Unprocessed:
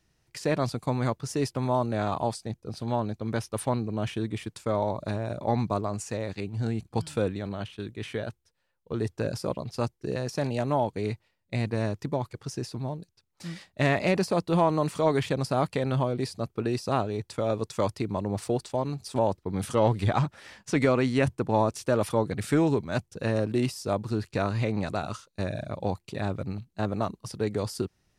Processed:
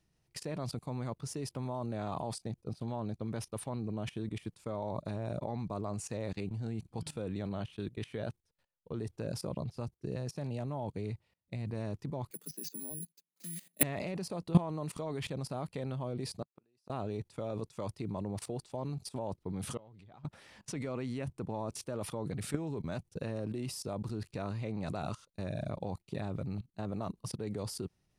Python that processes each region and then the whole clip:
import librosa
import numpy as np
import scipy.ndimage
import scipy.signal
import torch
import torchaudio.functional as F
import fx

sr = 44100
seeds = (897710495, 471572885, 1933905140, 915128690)

y = fx.chain(x, sr, fx.highpass(hz=61.0, slope=12),
    fx.low_shelf(hz=100.0, db=11.0), at=(9.46, 11.74))
y = fx.chain(y, sr, fx.steep_highpass(hz=160.0, slope=96),
    fx.peak_eq(hz=890.0, db=-12.5, octaves=1.2),
    fx.resample_bad(factor=4, down='filtered', up='zero_stuff'), at=(12.31, 13.83))
y = fx.chain(y, sr, fx.highpass(hz=310.0, slope=6),
    fx.gate_flip(shuts_db=-24.0, range_db=-38), at=(16.42, 16.9))
y = fx.chain(y, sr, fx.lowpass(hz=6200.0, slope=12),
    fx.gate_flip(shuts_db=-27.0, range_db=-38),
    fx.sustainer(db_per_s=22.0), at=(19.77, 20.25))
y = fx.graphic_eq_15(y, sr, hz=(160, 1600, 10000), db=(4, -4, 9))
y = fx.level_steps(y, sr, step_db=19)
y = fx.peak_eq(y, sr, hz=10000.0, db=-7.5, octaves=1.5)
y = F.gain(torch.from_numpy(y), 1.0).numpy()